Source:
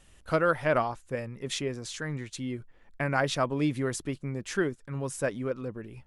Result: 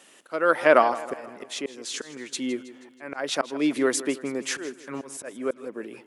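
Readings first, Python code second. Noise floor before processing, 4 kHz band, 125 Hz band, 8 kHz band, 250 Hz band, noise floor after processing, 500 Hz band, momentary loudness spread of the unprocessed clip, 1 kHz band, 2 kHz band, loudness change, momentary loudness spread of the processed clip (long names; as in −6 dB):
−58 dBFS, +4.5 dB, −15.5 dB, +6.5 dB, +3.0 dB, −54 dBFS, +5.0 dB, 10 LU, +5.5 dB, +4.0 dB, +4.5 dB, 18 LU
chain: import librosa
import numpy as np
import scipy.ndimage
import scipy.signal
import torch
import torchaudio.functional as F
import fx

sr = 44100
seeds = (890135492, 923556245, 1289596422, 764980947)

y = scipy.signal.sosfilt(scipy.signal.butter(4, 260.0, 'highpass', fs=sr, output='sos'), x)
y = fx.auto_swell(y, sr, attack_ms=351.0)
y = fx.echo_feedback(y, sr, ms=160, feedback_pct=51, wet_db=-16.0)
y = y * 10.0 ** (9.0 / 20.0)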